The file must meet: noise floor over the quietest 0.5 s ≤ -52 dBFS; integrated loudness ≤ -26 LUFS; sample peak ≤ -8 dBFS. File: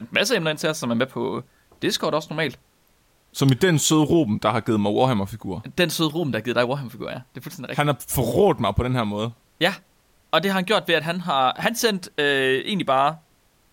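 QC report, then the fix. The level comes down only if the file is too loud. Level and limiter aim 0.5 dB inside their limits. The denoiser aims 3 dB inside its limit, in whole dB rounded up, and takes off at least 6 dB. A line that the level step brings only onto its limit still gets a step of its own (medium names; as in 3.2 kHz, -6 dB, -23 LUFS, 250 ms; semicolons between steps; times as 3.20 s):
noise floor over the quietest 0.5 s -61 dBFS: pass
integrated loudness -22.0 LUFS: fail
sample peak -5.5 dBFS: fail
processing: trim -4.5 dB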